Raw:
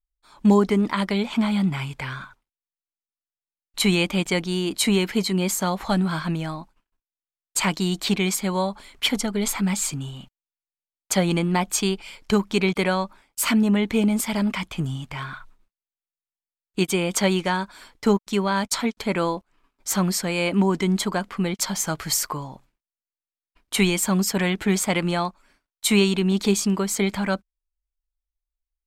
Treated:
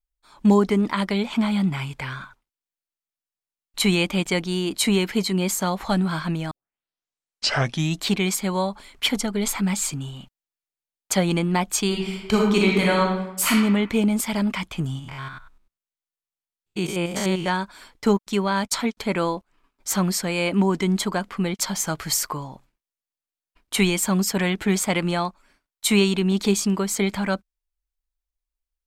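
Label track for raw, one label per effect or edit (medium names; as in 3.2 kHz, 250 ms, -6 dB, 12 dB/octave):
6.510000	6.510000	tape start 1.55 s
11.860000	13.510000	reverb throw, RT60 1 s, DRR -1.5 dB
14.990000	17.480000	spectrogram pixelated in time every 100 ms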